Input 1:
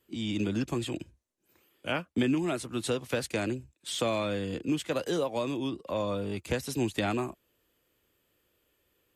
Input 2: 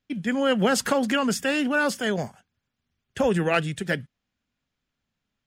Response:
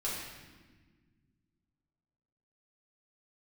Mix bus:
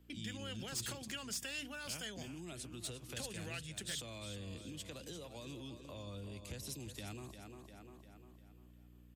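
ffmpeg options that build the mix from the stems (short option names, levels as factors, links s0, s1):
-filter_complex "[0:a]lowshelf=f=370:g=9,alimiter=limit=0.0841:level=0:latency=1:release=78,aeval=exprs='val(0)+0.00316*(sin(2*PI*60*n/s)+sin(2*PI*2*60*n/s)/2+sin(2*PI*3*60*n/s)/3+sin(2*PI*4*60*n/s)/4+sin(2*PI*5*60*n/s)/5)':c=same,volume=0.531,asplit=2[s0][s1];[s1]volume=0.299[s2];[1:a]bandreject=f=60:t=h:w=6,bandreject=f=120:t=h:w=6,bandreject=f=180:t=h:w=6,bandreject=f=240:t=h:w=6,bandreject=f=300:t=h:w=6,acompressor=threshold=0.0251:ratio=2.5,volume=0.891[s3];[s2]aecho=0:1:350|700|1050|1400|1750|2100:1|0.43|0.185|0.0795|0.0342|0.0147[s4];[s0][s3][s4]amix=inputs=3:normalize=0,lowshelf=f=280:g=-8,acrossover=split=130|3000[s5][s6][s7];[s6]acompressor=threshold=0.002:ratio=3[s8];[s5][s8][s7]amix=inputs=3:normalize=0,asoftclip=type=hard:threshold=0.0178"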